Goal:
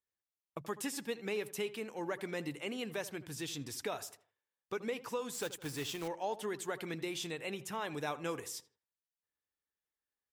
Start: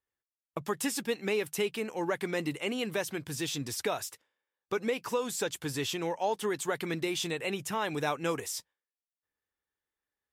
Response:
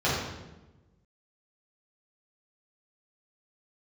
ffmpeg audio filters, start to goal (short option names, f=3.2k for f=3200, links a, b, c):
-filter_complex "[0:a]asettb=1/sr,asplit=3[a][b][c];[a]atrim=end=5.334[d];[b]atrim=start=5.33:end=6.08,asetpts=PTS-STARTPTS,afade=t=in:d=0.004:c=qsin,afade=t=out:st=0.746:d=0.004:c=qsin,acrusher=bits=2:mode=log:mix=0:aa=0.000001[e];[c]atrim=start=6.076[f];[d][e]acrossfade=d=0.004:c1=hsin:c2=qsin[g];[g][f]acrossfade=d=0.004:c1=qsin:c2=hsin,asplit=2[h][i];[i]adelay=80,lowpass=f=1.8k:p=1,volume=-15dB,asplit=2[j][k];[k]adelay=80,lowpass=f=1.8k:p=1,volume=0.4,asplit=2[l][m];[m]adelay=80,lowpass=f=1.8k:p=1,volume=0.4,asplit=2[n][o];[o]adelay=80,lowpass=f=1.8k:p=1,volume=0.4[p];[h][j][l][n][p]amix=inputs=5:normalize=0,volume=-7dB"